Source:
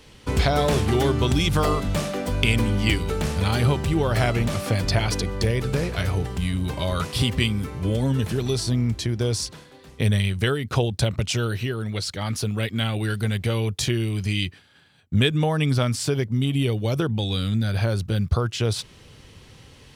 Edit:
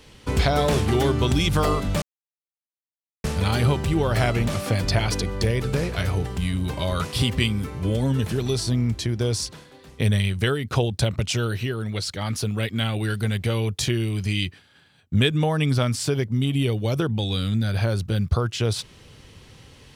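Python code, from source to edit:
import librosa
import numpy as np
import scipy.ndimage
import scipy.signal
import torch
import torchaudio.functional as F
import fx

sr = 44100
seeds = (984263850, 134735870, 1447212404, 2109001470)

y = fx.edit(x, sr, fx.silence(start_s=2.02, length_s=1.22), tone=tone)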